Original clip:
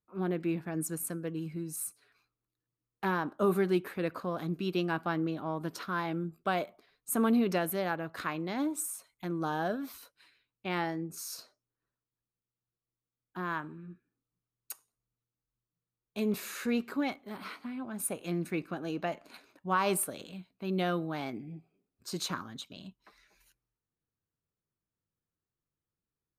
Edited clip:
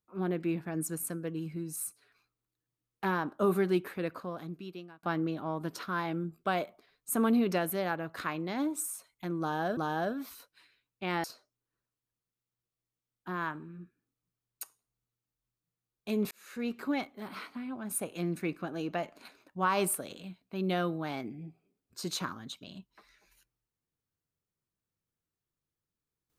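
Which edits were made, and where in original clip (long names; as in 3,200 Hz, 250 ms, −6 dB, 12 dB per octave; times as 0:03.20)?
0:03.84–0:05.03: fade out
0:09.40–0:09.77: repeat, 2 plays
0:10.87–0:11.33: remove
0:16.40–0:16.97: fade in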